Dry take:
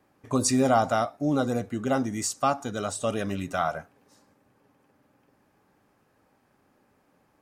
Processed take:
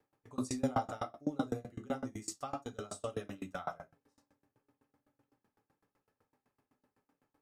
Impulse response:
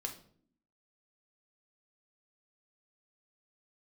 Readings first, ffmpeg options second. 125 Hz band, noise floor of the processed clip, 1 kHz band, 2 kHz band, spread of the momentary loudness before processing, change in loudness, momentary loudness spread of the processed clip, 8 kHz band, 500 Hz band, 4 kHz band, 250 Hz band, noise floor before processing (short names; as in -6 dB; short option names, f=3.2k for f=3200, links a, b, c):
-12.5 dB, under -85 dBFS, -13.5 dB, -15.0 dB, 8 LU, -13.0 dB, 10 LU, -16.0 dB, -13.5 dB, -15.0 dB, -12.0 dB, -67 dBFS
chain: -filter_complex "[1:a]atrim=start_sample=2205,afade=t=out:st=0.18:d=0.01,atrim=end_sample=8379[a];[0:a][a]afir=irnorm=-1:irlink=0,aeval=exprs='val(0)*pow(10,-27*if(lt(mod(7.9*n/s,1),2*abs(7.9)/1000),1-mod(7.9*n/s,1)/(2*abs(7.9)/1000),(mod(7.9*n/s,1)-2*abs(7.9)/1000)/(1-2*abs(7.9)/1000))/20)':c=same,volume=-5dB"